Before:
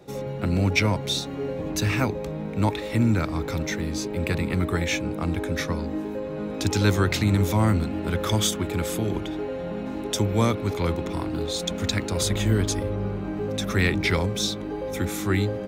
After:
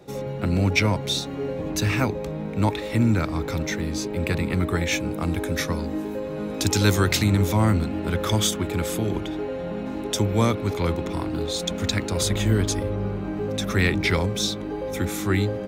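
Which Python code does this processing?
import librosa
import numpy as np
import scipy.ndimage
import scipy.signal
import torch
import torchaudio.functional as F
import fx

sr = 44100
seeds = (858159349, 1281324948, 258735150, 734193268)

y = fx.high_shelf(x, sr, hz=fx.line((4.91, 8500.0), (7.26, 4500.0)), db=8.5, at=(4.91, 7.26), fade=0.02)
y = y * librosa.db_to_amplitude(1.0)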